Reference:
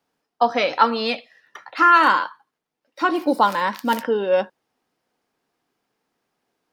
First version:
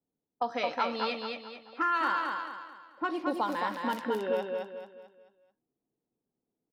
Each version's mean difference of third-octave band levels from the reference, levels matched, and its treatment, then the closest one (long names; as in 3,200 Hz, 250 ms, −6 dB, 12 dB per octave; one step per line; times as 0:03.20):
5.0 dB: low-pass that shuts in the quiet parts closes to 370 Hz, open at −15.5 dBFS
downward compressor 2 to 1, threshold −25 dBFS, peak gain reduction 9 dB
on a send: repeating echo 219 ms, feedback 39%, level −4 dB
on the sum: level −7 dB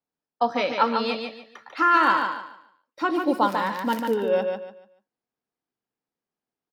4.0 dB: noise gate −50 dBFS, range −13 dB
low-shelf EQ 380 Hz +5.5 dB
on a send: repeating echo 145 ms, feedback 28%, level −5.5 dB
on the sum: level −6 dB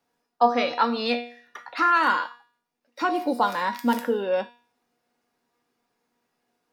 2.0 dB: notch filter 3,100 Hz, Q 26
in parallel at +0.5 dB: downward compressor, threshold −26 dBFS, peak gain reduction 15.5 dB
on the sum: tuned comb filter 240 Hz, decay 0.48 s, harmonics all, mix 80%
level +4.5 dB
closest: third